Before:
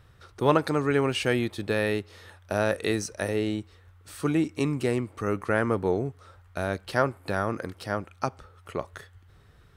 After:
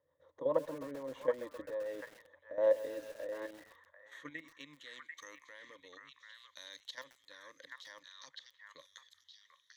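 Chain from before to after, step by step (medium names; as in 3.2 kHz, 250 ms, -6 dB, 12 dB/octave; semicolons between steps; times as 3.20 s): single-diode clipper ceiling -12 dBFS; band-pass sweep 590 Hz -> 4.5 kHz, 3.14–5.10 s; level held to a coarse grid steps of 14 dB; bass shelf 300 Hz -5.5 dB; in parallel at -1 dB: compression 8:1, threshold -51 dBFS, peak gain reduction 23 dB; on the sum: rotary cabinet horn 6.7 Hz, later 0.7 Hz, at 2.02 s; rippled EQ curve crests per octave 1.1, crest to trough 16 dB; on a send: repeats whose band climbs or falls 742 ms, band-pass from 1.5 kHz, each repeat 1.4 oct, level -1 dB; on the sum: bit-crushed delay 130 ms, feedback 80%, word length 7-bit, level -14.5 dB; trim -1.5 dB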